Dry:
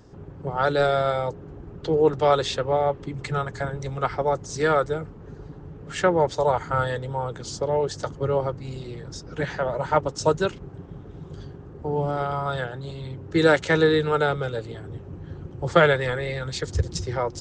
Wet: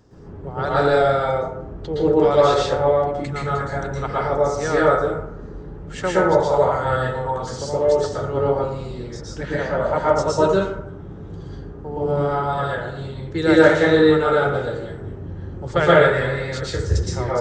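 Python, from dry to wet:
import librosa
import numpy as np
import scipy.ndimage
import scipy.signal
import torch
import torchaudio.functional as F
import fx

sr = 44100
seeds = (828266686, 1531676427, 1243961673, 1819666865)

y = fx.rev_plate(x, sr, seeds[0], rt60_s=0.77, hf_ratio=0.45, predelay_ms=105, drr_db=-7.0)
y = y * 10.0 ** (-4.0 / 20.0)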